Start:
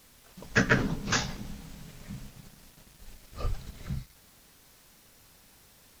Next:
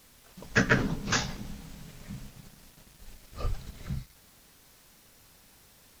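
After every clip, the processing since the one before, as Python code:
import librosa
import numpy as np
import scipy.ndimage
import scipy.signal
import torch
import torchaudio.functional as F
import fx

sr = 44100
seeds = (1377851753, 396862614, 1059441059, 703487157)

y = x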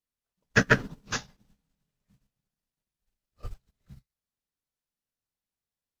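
y = fx.notch(x, sr, hz=2200.0, q=28.0)
y = fx.upward_expand(y, sr, threshold_db=-46.0, expansion=2.5)
y = y * librosa.db_to_amplitude(4.0)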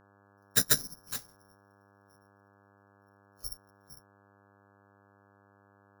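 y = (np.kron(scipy.signal.resample_poly(x, 1, 8), np.eye(8)[0]) * 8)[:len(x)]
y = fx.dmg_buzz(y, sr, base_hz=100.0, harmonics=17, level_db=-50.0, tilt_db=-2, odd_only=False)
y = y * librosa.db_to_amplitude(-13.0)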